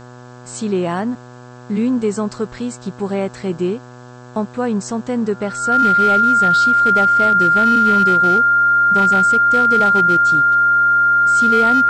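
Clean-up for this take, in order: clip repair -8 dBFS; de-hum 123.4 Hz, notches 14; band-stop 1.4 kHz, Q 30; expander -29 dBFS, range -21 dB

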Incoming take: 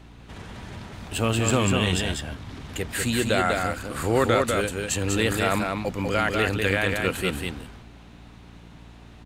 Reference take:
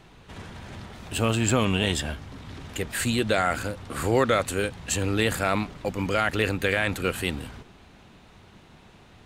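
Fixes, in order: de-hum 57.9 Hz, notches 5; inverse comb 196 ms -4 dB

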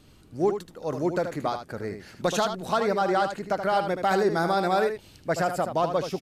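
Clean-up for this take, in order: inverse comb 77 ms -8 dB

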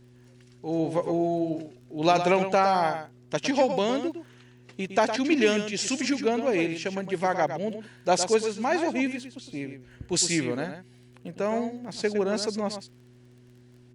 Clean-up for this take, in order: de-click; de-hum 122.9 Hz, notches 3; inverse comb 110 ms -9 dB

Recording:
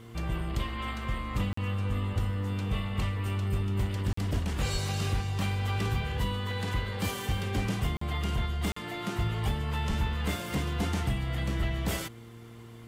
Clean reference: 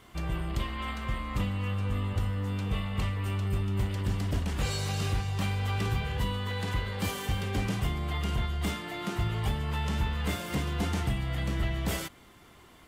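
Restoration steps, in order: de-hum 115.4 Hz, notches 4; 4.72–4.84 s: high-pass 140 Hz 24 dB/octave; 9.88–10.00 s: high-pass 140 Hz 24 dB/octave; interpolate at 1.53/4.13/7.97/8.72 s, 44 ms

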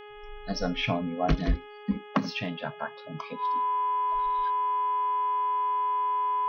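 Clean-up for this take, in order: de-hum 417.2 Hz, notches 8; band-stop 1 kHz, Q 30

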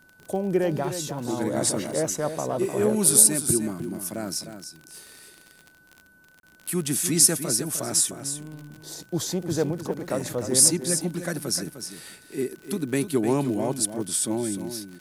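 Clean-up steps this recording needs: de-click; band-stop 1.5 kHz, Q 30; interpolate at 6.40 s, 32 ms; inverse comb 304 ms -9.5 dB

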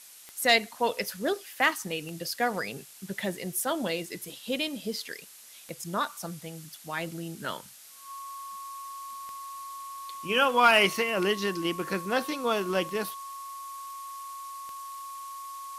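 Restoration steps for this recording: clip repair -11 dBFS; de-click; band-stop 1.1 kHz, Q 30; noise reduction 25 dB, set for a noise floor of -49 dBFS

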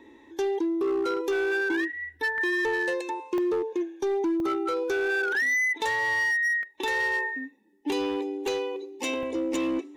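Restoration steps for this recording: clip repair -22.5 dBFS; interpolate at 2.38/3.38/4.40/6.63/7.81/9.23 s, 1.1 ms

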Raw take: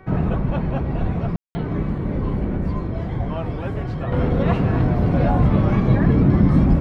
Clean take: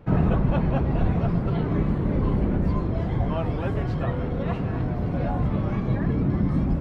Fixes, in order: de-hum 378.2 Hz, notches 6; room tone fill 1.36–1.55 s; trim 0 dB, from 4.12 s -8 dB

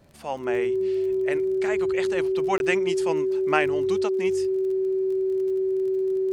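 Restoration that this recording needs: de-click; band-stop 380 Hz, Q 30; interpolate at 2.58 s, 21 ms

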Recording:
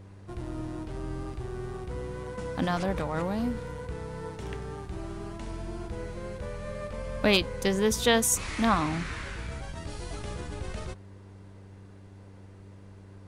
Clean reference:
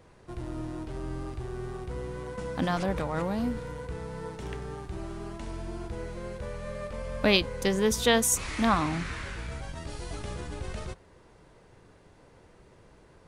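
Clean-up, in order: clip repair -10.5 dBFS; de-hum 97.7 Hz, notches 4

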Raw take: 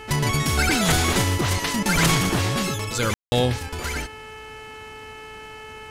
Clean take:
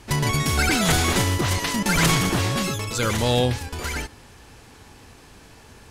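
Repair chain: de-hum 434.3 Hz, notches 7; room tone fill 3.14–3.32 s

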